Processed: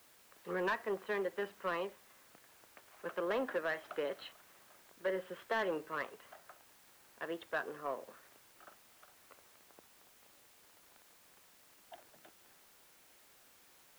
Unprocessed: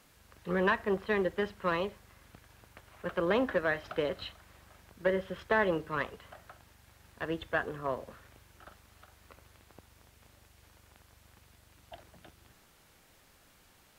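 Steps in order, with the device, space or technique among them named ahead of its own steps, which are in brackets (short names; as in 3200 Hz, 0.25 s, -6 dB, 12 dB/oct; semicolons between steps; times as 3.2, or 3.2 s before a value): tape answering machine (BPF 310–3200 Hz; soft clip -22.5 dBFS, distortion -16 dB; wow and flutter; white noise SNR 22 dB); gain -4 dB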